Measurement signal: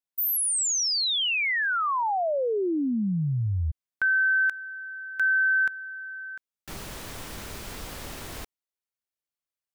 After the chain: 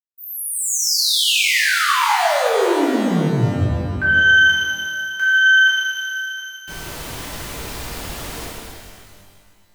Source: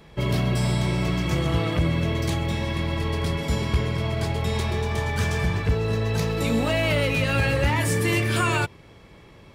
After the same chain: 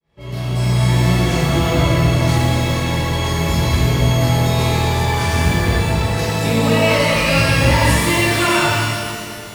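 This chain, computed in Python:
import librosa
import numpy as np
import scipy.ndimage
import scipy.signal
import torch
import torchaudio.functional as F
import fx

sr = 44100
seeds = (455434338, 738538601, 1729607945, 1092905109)

y = fx.fade_in_head(x, sr, length_s=0.92)
y = fx.rev_shimmer(y, sr, seeds[0], rt60_s=2.0, semitones=12, shimmer_db=-8, drr_db=-8.5)
y = y * librosa.db_to_amplitude(-1.0)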